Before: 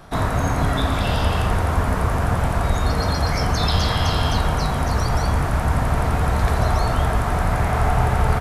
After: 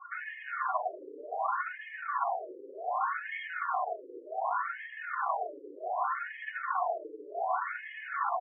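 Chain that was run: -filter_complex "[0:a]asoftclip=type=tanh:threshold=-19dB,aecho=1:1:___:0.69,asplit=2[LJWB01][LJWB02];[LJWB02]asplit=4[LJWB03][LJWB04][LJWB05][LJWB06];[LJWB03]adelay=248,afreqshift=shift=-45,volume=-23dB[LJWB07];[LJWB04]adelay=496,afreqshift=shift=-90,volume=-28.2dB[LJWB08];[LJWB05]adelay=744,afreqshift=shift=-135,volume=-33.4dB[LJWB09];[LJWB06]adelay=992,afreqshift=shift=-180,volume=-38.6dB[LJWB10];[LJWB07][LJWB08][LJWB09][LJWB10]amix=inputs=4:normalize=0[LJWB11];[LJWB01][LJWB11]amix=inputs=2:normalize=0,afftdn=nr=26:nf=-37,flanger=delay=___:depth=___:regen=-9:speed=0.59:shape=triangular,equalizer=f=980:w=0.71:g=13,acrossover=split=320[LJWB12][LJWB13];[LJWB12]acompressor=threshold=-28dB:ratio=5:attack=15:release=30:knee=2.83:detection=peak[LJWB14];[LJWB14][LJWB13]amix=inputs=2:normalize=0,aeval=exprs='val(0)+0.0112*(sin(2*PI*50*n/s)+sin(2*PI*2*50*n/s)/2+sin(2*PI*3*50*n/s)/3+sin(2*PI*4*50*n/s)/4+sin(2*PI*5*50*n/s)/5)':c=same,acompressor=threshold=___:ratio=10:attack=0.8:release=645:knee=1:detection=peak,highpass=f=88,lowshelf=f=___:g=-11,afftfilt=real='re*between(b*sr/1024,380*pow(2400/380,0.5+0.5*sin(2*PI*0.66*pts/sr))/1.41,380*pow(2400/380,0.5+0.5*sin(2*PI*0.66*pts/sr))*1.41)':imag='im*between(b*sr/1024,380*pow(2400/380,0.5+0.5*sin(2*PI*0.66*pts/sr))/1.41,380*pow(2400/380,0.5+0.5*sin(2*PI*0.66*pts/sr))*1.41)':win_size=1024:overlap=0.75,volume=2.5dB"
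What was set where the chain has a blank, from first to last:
2.8, 5.4, 2.8, -21dB, 430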